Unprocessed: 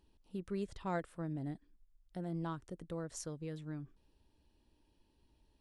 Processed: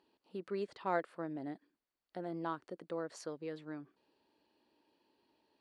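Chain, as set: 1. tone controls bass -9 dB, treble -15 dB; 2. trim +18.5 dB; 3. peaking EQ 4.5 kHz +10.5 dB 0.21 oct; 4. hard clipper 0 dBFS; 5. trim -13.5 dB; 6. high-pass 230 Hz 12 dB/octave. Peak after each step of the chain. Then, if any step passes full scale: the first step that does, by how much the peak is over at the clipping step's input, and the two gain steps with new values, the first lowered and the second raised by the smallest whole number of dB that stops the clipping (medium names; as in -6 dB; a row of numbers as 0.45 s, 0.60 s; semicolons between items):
-24.0 dBFS, -5.5 dBFS, -5.5 dBFS, -5.5 dBFS, -19.0 dBFS, -19.5 dBFS; nothing clips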